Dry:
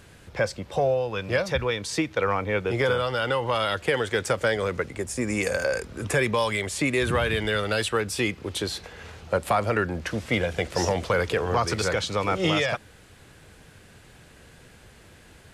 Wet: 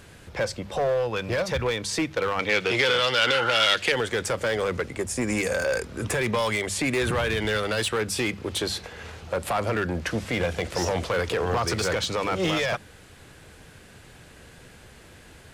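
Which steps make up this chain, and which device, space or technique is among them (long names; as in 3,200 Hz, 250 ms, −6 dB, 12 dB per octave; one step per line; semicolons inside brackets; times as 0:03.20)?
limiter into clipper (brickwall limiter −16.5 dBFS, peak gain reduction 6.5 dB; hard clipping −22.5 dBFS, distortion −14 dB)
0:02.39–0:03.92: meter weighting curve D
0:03.29–0:03.64: healed spectral selection 890–1,800 Hz
mains-hum notches 50/100/150/200 Hz
level +2.5 dB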